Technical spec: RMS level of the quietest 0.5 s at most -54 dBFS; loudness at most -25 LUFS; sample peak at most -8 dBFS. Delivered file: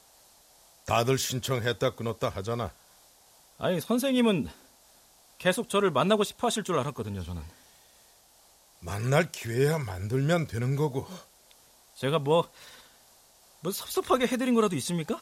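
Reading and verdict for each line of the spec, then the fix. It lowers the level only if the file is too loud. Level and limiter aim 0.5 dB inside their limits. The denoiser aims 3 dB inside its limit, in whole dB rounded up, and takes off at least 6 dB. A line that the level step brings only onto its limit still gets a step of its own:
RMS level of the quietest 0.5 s -60 dBFS: pass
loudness -28.0 LUFS: pass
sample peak -11.5 dBFS: pass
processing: none needed

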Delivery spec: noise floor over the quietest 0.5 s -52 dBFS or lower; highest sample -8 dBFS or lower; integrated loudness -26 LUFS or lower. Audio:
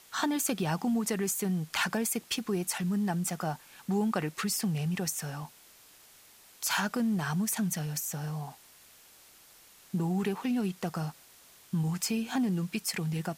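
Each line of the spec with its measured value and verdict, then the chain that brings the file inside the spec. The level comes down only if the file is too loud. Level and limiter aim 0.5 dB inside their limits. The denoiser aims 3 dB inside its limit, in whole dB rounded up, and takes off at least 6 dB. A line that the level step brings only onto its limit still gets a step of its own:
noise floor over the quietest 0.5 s -57 dBFS: pass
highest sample -15.5 dBFS: pass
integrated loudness -31.5 LUFS: pass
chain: none needed

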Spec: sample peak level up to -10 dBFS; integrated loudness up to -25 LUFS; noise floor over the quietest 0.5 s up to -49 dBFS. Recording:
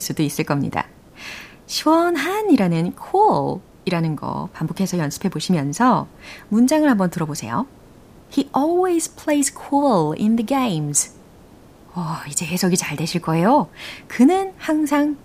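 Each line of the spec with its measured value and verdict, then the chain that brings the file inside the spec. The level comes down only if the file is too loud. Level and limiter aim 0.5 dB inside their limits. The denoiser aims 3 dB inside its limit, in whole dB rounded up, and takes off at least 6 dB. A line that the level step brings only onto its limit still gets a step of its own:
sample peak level -3.5 dBFS: fail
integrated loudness -19.5 LUFS: fail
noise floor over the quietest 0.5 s -46 dBFS: fail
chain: trim -6 dB; peak limiter -10.5 dBFS

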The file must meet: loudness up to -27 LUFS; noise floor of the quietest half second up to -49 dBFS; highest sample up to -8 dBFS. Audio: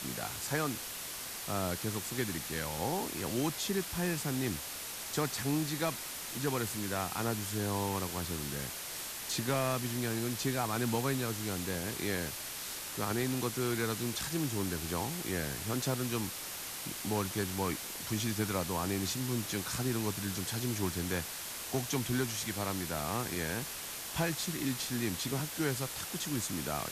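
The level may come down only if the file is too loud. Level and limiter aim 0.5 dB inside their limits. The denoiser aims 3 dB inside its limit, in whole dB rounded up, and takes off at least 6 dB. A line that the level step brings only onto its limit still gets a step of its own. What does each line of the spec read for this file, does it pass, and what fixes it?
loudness -34.5 LUFS: pass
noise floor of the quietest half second -42 dBFS: fail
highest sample -19.0 dBFS: pass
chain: noise reduction 10 dB, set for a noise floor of -42 dBFS

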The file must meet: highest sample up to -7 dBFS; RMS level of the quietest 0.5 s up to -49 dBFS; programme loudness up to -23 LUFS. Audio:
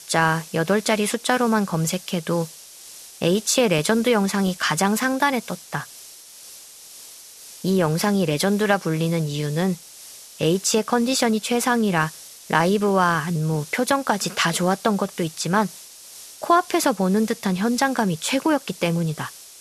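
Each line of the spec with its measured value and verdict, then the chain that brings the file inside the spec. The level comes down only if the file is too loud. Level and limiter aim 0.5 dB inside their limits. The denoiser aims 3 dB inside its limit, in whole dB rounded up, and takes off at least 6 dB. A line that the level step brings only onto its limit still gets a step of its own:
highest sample -3.5 dBFS: fail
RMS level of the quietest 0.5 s -43 dBFS: fail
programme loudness -21.5 LUFS: fail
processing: noise reduction 7 dB, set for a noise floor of -43 dBFS; trim -2 dB; peak limiter -7.5 dBFS

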